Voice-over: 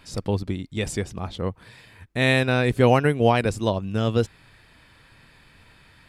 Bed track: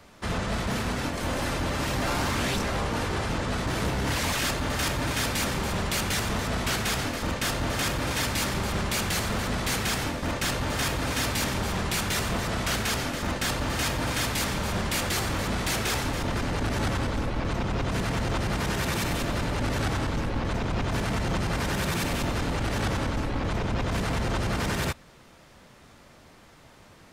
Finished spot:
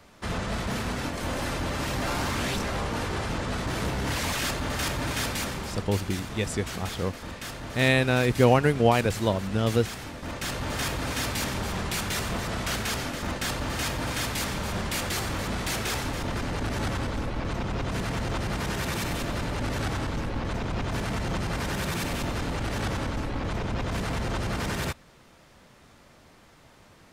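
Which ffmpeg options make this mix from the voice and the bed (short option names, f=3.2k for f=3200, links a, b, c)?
-filter_complex "[0:a]adelay=5600,volume=-2dB[a];[1:a]volume=6dB,afade=t=out:st=5.23:d=0.65:silence=0.398107,afade=t=in:st=10.05:d=0.69:silence=0.421697[b];[a][b]amix=inputs=2:normalize=0"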